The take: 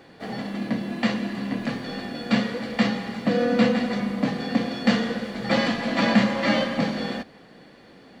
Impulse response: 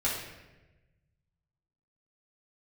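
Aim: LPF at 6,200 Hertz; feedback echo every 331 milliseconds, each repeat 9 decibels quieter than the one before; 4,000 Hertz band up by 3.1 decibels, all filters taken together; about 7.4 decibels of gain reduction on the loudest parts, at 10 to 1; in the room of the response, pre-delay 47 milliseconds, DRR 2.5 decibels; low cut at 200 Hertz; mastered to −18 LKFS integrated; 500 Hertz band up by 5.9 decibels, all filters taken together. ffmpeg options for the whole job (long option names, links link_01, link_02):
-filter_complex "[0:a]highpass=200,lowpass=6200,equalizer=frequency=500:width_type=o:gain=6.5,equalizer=frequency=4000:width_type=o:gain=4.5,acompressor=threshold=-20dB:ratio=10,aecho=1:1:331|662|993|1324:0.355|0.124|0.0435|0.0152,asplit=2[link_01][link_02];[1:a]atrim=start_sample=2205,adelay=47[link_03];[link_02][link_03]afir=irnorm=-1:irlink=0,volume=-10.5dB[link_04];[link_01][link_04]amix=inputs=2:normalize=0,volume=6.5dB"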